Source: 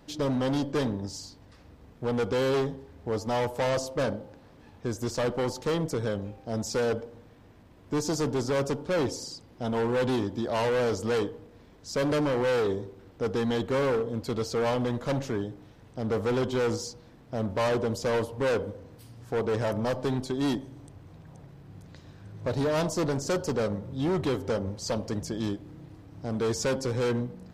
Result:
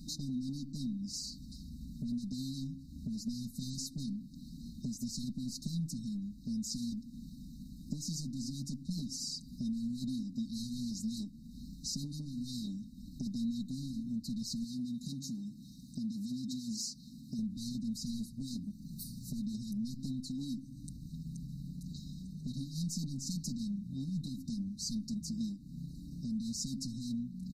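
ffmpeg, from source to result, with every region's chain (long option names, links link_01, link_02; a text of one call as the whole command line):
ffmpeg -i in.wav -filter_complex "[0:a]asettb=1/sr,asplit=3[link_01][link_02][link_03];[link_01]atrim=end=14.644[link_04];[link_02]atrim=start=14.64:end=17.39,asetpts=PTS-STARTPTS,afade=type=in:duration=0.004:curve=qsin,afade=type=out:start_time=2.746:duration=0.004:curve=qsin,acompressor=threshold=-29dB:ratio=4:attack=3.2:release=140:knee=1:detection=peak,highpass=frequency=220:poles=1[link_05];[link_03]atrim=start=17.386[link_06];[link_04][link_05]acrossfade=duration=0.004:curve1=hsin:curve2=qsin[link_07];[link_07][link_06]acrossfade=duration=0.004:curve1=qsin:curve2=hsin,asettb=1/sr,asplit=3[link_08][link_09][link_10];[link_08]atrim=end=18.704[link_11];[link_09]atrim=start=18.7:end=19.4,asetpts=PTS-STARTPTS,afade=type=in:duration=0.004:curve=qsin,afade=type=out:start_time=0.696:duration=0.004:curve=qsin,highshelf=frequency=11000:gain=8,aecho=1:1:5.6:0.35,atrim=end_sample=30870[link_12];[link_10]atrim=start=19.396[link_13];[link_11][link_12]acrossfade=duration=0.004:curve1=hsin:curve2=qsin[link_14];[link_14][link_13]acrossfade=duration=0.004:curve1=qsin:curve2=hsin,afftfilt=real='re*(1-between(b*sr/4096,320,3700))':imag='im*(1-between(b*sr/4096,320,3700))':win_size=4096:overlap=0.75,acompressor=threshold=-47dB:ratio=4,aecho=1:1:4.9:0.97,volume=6.5dB" out.wav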